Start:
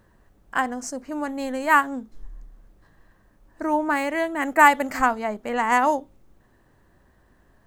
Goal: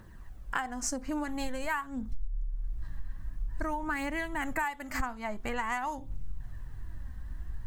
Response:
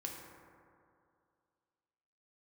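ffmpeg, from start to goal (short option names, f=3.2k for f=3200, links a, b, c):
-filter_complex "[0:a]asplit=2[a][b];[1:a]atrim=start_sample=2205,atrim=end_sample=3528[c];[b][c]afir=irnorm=-1:irlink=0,volume=-12dB[d];[a][d]amix=inputs=2:normalize=0,asubboost=boost=11.5:cutoff=120,aphaser=in_gain=1:out_gain=1:delay=4:decay=0.39:speed=0.49:type=triangular,acompressor=threshold=-30dB:ratio=16,equalizer=f=520:w=1.3:g=-6,volume=2.5dB"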